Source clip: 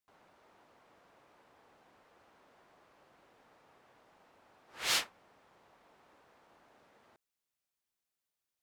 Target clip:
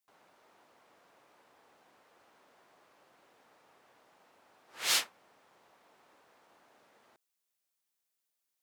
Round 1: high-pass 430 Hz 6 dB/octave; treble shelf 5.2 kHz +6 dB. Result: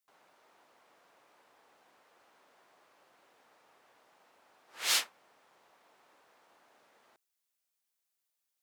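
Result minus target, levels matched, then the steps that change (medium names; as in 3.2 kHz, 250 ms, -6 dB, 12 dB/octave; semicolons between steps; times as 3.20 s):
250 Hz band -3.5 dB
change: high-pass 200 Hz 6 dB/octave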